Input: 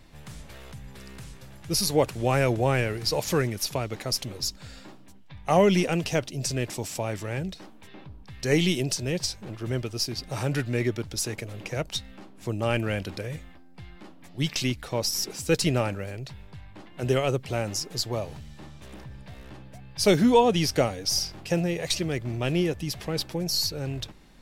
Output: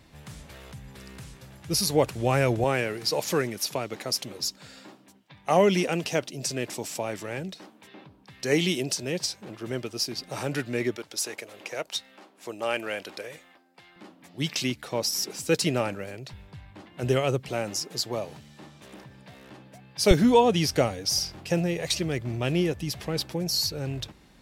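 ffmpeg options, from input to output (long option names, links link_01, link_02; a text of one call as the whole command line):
ffmpeg -i in.wav -af "asetnsamples=nb_out_samples=441:pad=0,asendcmd='2.64 highpass f 190;10.96 highpass f 430;13.96 highpass f 160;16.33 highpass f 48;17.48 highpass f 170;20.11 highpass f 48',highpass=51" out.wav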